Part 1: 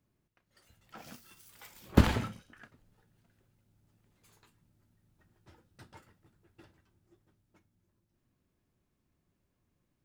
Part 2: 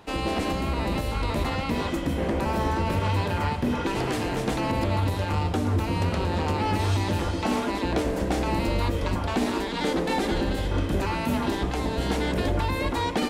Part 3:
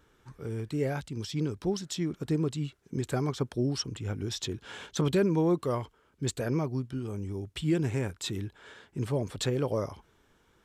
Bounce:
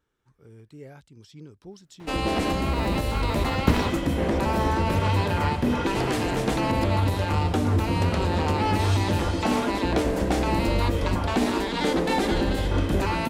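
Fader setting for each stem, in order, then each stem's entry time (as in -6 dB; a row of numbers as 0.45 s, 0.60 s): +1.0 dB, +2.0 dB, -13.5 dB; 1.70 s, 2.00 s, 0.00 s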